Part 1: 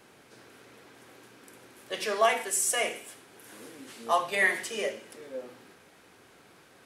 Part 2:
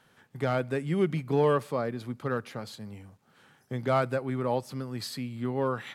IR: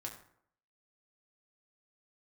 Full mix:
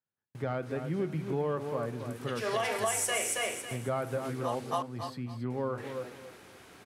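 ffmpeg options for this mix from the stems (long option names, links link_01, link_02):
-filter_complex "[0:a]adelay=350,volume=2dB,asplit=3[link_01][link_02][link_03];[link_01]atrim=end=4.55,asetpts=PTS-STARTPTS,afade=type=out:start_time=4.546:duration=0.004:curve=hsin[link_04];[link_02]atrim=start=4.55:end=5.5,asetpts=PTS-STARTPTS,volume=0[link_05];[link_03]atrim=start=5.5,asetpts=PTS-STARTPTS,afade=type=in:duration=0.004:curve=hsin[link_06];[link_04][link_05][link_06]concat=n=3:v=0:a=1,asplit=2[link_07][link_08];[link_08]volume=-4.5dB[link_09];[1:a]agate=range=-30dB:threshold=-51dB:ratio=16:detection=peak,highshelf=frequency=3300:gain=-12,volume=-6.5dB,asplit=4[link_10][link_11][link_12][link_13];[link_11]volume=-5.5dB[link_14];[link_12]volume=-7dB[link_15];[link_13]apad=whole_len=317655[link_16];[link_07][link_16]sidechaincompress=threshold=-46dB:ratio=4:attack=16:release=139[link_17];[2:a]atrim=start_sample=2205[link_18];[link_14][link_18]afir=irnorm=-1:irlink=0[link_19];[link_09][link_15]amix=inputs=2:normalize=0,aecho=0:1:275|550|825|1100:1|0.24|0.0576|0.0138[link_20];[link_17][link_10][link_19][link_20]amix=inputs=4:normalize=0,equalizer=frequency=87:width=2.3:gain=4.5,acompressor=threshold=-27dB:ratio=6"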